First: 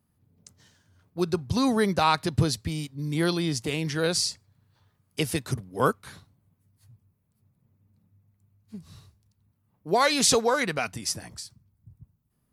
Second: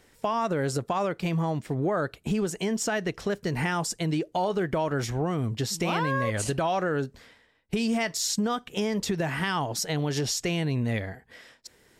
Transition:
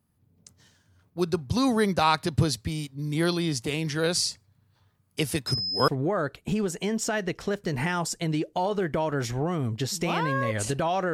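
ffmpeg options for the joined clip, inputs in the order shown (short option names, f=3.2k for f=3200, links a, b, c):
-filter_complex "[0:a]asettb=1/sr,asplit=3[a][b][c];[a]atrim=end=5.474[d];[b]atrim=start=5.47:end=5.88,asetpts=PTS-STARTPTS,afade=t=in:d=0.004:c=qsin,afade=t=out:st=0.406:d=0.004:c=qsin,aeval=exprs='val(0)+0.0447*sin(2*PI*5100*n/s)':c=same[e];[c]atrim=start=5.876[f];[d][e]acrossfade=d=0.004:c1=hsin:c2=qsin[g];[g][f]acrossfade=d=0.004:c1=qsin:c2=hsin,apad=whole_dur=11.13,atrim=end=11.13,atrim=end=5.882[h];[1:a]atrim=start=1.668:end=6.92[i];[h][i]acrossfade=d=0.004:c1=hsin:c2=hsin"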